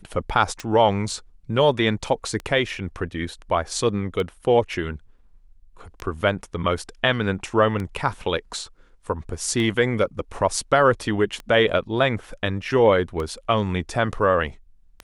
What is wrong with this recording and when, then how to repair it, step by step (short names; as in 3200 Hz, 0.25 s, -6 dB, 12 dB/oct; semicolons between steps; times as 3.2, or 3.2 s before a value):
tick 33 1/3 rpm -17 dBFS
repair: de-click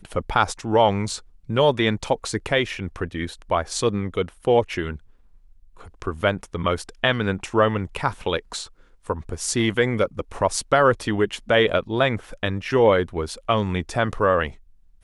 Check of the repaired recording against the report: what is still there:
none